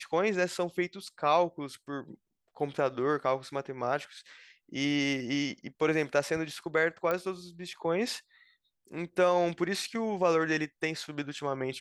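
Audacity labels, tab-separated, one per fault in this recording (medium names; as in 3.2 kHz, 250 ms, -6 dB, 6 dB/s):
7.110000	7.110000	pop -17 dBFS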